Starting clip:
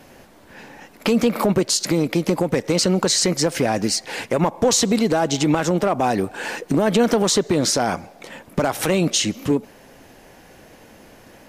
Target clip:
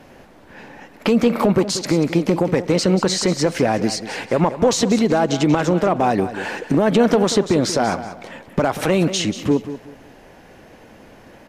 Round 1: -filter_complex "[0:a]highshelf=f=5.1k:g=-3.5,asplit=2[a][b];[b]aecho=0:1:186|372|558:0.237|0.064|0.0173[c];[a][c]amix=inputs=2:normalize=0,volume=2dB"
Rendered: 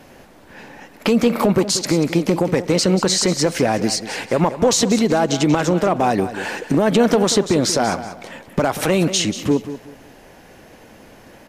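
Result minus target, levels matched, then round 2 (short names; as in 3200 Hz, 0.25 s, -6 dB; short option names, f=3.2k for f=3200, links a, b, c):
8000 Hz band +4.0 dB
-filter_complex "[0:a]highshelf=f=5.1k:g=-11,asplit=2[a][b];[b]aecho=0:1:186|372|558:0.237|0.064|0.0173[c];[a][c]amix=inputs=2:normalize=0,volume=2dB"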